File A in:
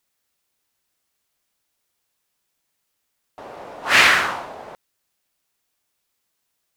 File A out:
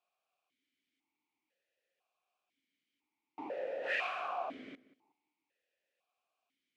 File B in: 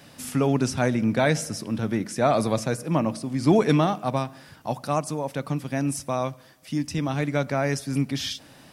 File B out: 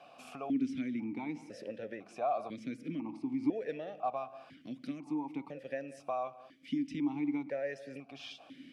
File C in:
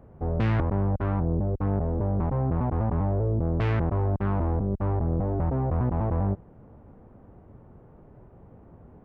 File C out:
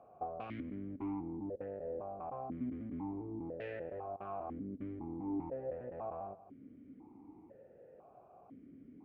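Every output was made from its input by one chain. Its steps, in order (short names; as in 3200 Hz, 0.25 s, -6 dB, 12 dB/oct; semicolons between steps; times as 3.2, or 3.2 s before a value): compressor 6:1, threshold -30 dBFS; on a send: darkening echo 0.185 s, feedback 18%, low-pass 1700 Hz, level -16 dB; on the sum: vowel sequencer 2 Hz; gain +6.5 dB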